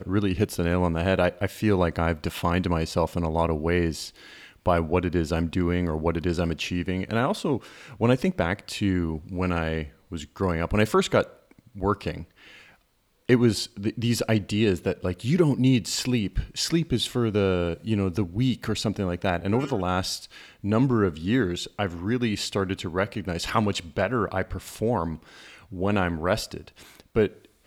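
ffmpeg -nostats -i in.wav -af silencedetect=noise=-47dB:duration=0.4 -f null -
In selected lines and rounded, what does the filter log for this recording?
silence_start: 12.74
silence_end: 13.28 | silence_duration: 0.54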